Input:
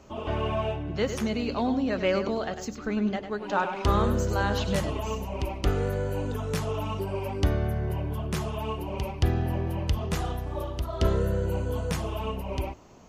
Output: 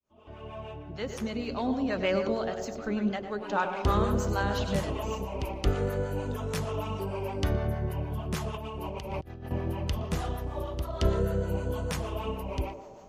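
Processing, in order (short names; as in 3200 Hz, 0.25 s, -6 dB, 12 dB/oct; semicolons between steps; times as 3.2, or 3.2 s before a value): opening faded in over 1.90 s; on a send: narrowing echo 0.118 s, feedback 73%, band-pass 610 Hz, level -8.5 dB; on the sum: harmonic tremolo 6.5 Hz, depth 50%, crossover 630 Hz; 8.54–9.51 negative-ratio compressor -39 dBFS, ratio -1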